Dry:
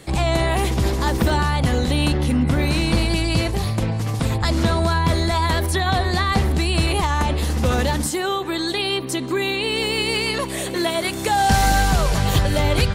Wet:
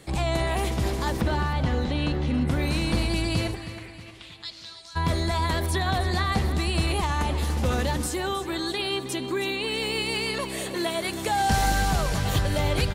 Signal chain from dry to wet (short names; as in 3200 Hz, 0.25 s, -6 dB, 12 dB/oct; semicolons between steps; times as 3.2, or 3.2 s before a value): 1.21–2.34 air absorption 120 m; 3.54–4.95 band-pass 1600 Hz -> 6000 Hz, Q 2.9; feedback echo 0.316 s, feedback 46%, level -12.5 dB; gain -6 dB